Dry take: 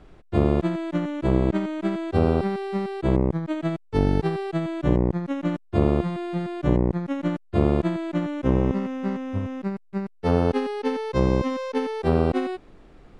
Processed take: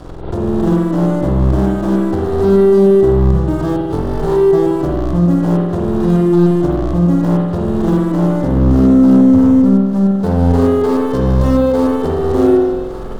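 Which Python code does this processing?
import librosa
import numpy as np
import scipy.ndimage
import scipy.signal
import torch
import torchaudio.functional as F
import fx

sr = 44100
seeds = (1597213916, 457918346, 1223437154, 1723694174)

y = np.where(x < 0.0, 10.0 ** (-3.0 / 20.0) * x, x)
y = fx.over_compress(y, sr, threshold_db=-25.0, ratio=-0.5)
y = fx.leveller(y, sr, passes=5)
y = fx.peak_eq(y, sr, hz=2300.0, db=-15.0, octaves=0.97)
y = fx.echo_thinned(y, sr, ms=1156, feedback_pct=55, hz=770.0, wet_db=-13.0)
y = fx.rev_spring(y, sr, rt60_s=1.2, pass_ms=(46,), chirp_ms=40, drr_db=-2.5)
y = fx.pre_swell(y, sr, db_per_s=72.0)
y = y * librosa.db_to_amplitude(-2.5)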